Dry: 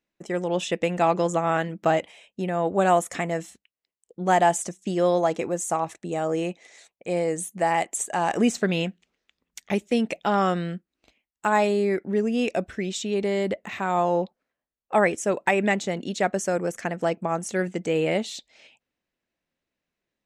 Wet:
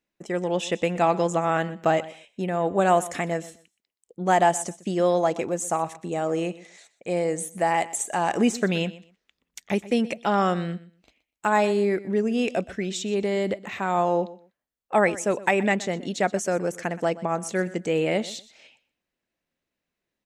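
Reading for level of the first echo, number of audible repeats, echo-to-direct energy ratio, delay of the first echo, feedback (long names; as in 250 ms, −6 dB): −18.0 dB, 2, −18.0 dB, 123 ms, 20%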